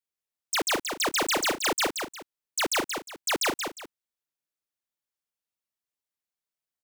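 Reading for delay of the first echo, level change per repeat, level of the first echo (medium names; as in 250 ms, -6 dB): 178 ms, -10.5 dB, -6.0 dB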